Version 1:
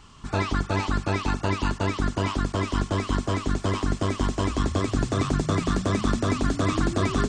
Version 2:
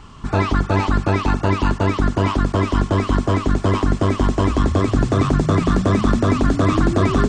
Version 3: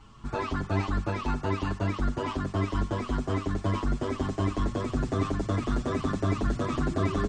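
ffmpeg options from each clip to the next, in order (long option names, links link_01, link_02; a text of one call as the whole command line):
ffmpeg -i in.wav -filter_complex "[0:a]highshelf=frequency=2500:gain=-9.5,asplit=2[link_01][link_02];[link_02]alimiter=limit=-19.5dB:level=0:latency=1:release=30,volume=-2dB[link_03];[link_01][link_03]amix=inputs=2:normalize=0,acontrast=23" out.wav
ffmpeg -i in.wav -filter_complex "[0:a]asplit=2[link_01][link_02];[link_02]adelay=6.9,afreqshift=1.1[link_03];[link_01][link_03]amix=inputs=2:normalize=1,volume=-8dB" out.wav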